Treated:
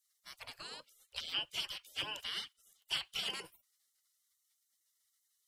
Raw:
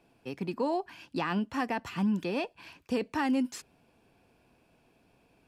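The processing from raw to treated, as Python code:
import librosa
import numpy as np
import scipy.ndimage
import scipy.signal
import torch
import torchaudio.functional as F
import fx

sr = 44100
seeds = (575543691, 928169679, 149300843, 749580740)

y = fx.spec_gate(x, sr, threshold_db=-30, keep='weak')
y = fx.peak_eq(y, sr, hz=3000.0, db=13.5, octaves=0.44, at=(0.84, 3.31))
y = F.gain(torch.from_numpy(y), 6.5).numpy()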